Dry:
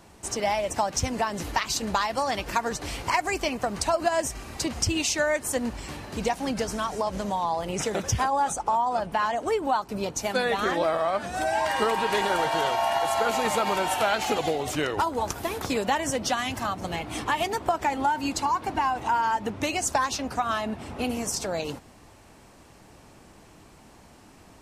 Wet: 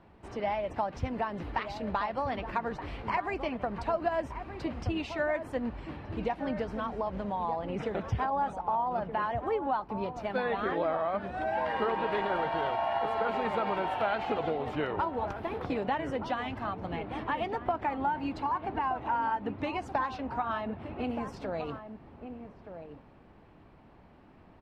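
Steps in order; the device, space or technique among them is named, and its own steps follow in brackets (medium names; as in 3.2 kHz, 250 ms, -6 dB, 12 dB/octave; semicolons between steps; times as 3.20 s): shout across a valley (distance through air 420 m; echo from a far wall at 210 m, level -9 dB); trim -4 dB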